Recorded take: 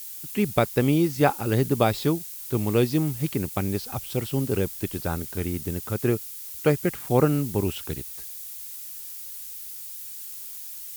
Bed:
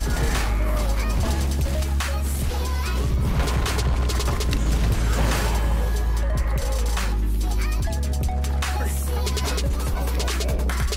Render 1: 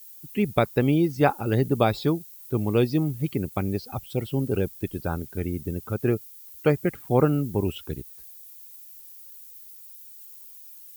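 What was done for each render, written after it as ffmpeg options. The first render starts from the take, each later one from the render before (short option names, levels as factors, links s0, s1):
-af "afftdn=nr=13:nf=-38"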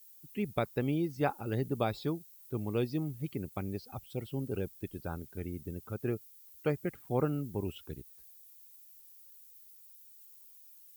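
-af "volume=0.299"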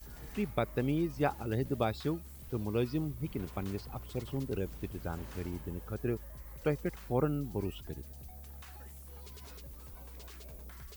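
-filter_complex "[1:a]volume=0.0473[s0];[0:a][s0]amix=inputs=2:normalize=0"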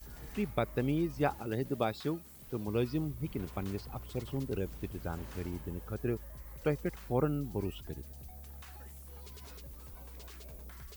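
-filter_complex "[0:a]asettb=1/sr,asplit=3[s0][s1][s2];[s0]atrim=end=1.384[s3];[s1]atrim=start=1.38:end=2.68,asetpts=PTS-STARTPTS,afade=t=in:d=0.004:c=qsin,afade=t=out:st=1.296:d=0.004:c=qsin,equalizer=f=64:w=1.2:g=-12.5[s4];[s2]atrim=start=2.676[s5];[s3][s4]acrossfade=d=0.004:c1=hsin:c2=qsin[s6];[s6][s5]acrossfade=d=0.004:c1=qsin:c2=hsin"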